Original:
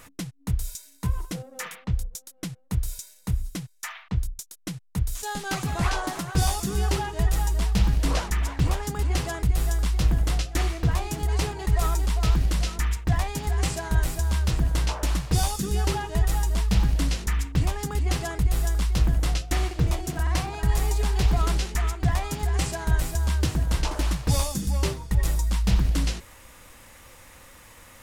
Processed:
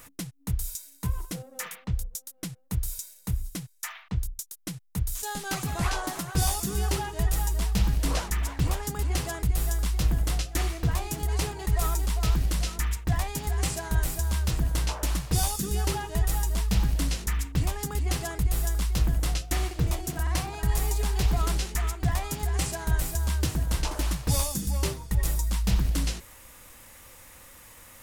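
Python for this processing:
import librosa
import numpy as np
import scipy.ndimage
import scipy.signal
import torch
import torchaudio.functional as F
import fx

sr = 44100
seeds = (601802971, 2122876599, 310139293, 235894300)

y = fx.high_shelf(x, sr, hz=9200.0, db=10.5)
y = y * librosa.db_to_amplitude(-3.0)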